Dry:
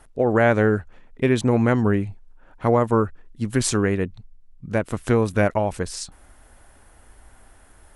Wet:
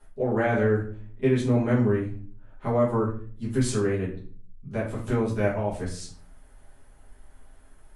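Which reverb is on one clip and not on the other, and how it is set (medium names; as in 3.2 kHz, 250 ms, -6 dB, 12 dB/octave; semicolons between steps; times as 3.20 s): simulated room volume 40 m³, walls mixed, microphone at 1.4 m; trim -15 dB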